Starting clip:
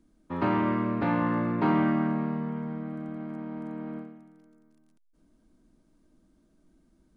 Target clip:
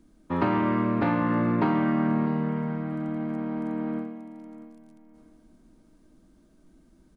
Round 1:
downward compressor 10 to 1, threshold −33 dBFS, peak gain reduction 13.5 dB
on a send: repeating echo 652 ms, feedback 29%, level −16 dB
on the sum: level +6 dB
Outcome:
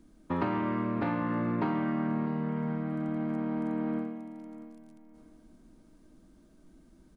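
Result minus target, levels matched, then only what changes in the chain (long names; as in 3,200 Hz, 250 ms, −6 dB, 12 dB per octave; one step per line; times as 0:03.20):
downward compressor: peak gain reduction +6.5 dB
change: downward compressor 10 to 1, threshold −26 dBFS, peak gain reduction 7 dB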